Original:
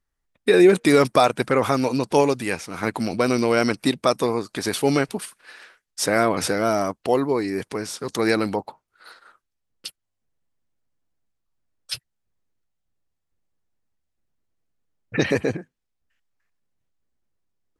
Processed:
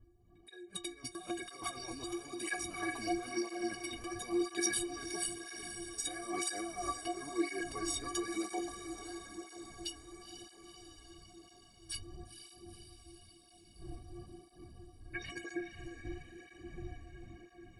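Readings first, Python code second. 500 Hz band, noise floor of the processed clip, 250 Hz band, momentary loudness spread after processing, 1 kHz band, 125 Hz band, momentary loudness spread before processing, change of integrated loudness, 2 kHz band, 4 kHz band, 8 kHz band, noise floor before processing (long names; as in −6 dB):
−22.0 dB, −62 dBFS, −16.5 dB, 19 LU, −17.5 dB, −21.0 dB, 16 LU, −18.0 dB, −15.0 dB, −11.5 dB, −6.0 dB, −79 dBFS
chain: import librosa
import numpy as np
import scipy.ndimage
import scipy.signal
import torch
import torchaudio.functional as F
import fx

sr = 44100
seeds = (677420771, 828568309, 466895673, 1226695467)

y = fx.dmg_wind(x, sr, seeds[0], corner_hz=110.0, level_db=-31.0)
y = fx.high_shelf(y, sr, hz=4600.0, db=6.5)
y = fx.notch(y, sr, hz=1400.0, q=18.0)
y = fx.over_compress(y, sr, threshold_db=-24.0, ratio=-0.5)
y = fx.stiff_resonator(y, sr, f0_hz=340.0, decay_s=0.35, stiffness=0.03)
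y = fx.echo_diffused(y, sr, ms=481, feedback_pct=69, wet_db=-9)
y = fx.flanger_cancel(y, sr, hz=1.0, depth_ms=5.9)
y = y * 10.0 ** (5.5 / 20.0)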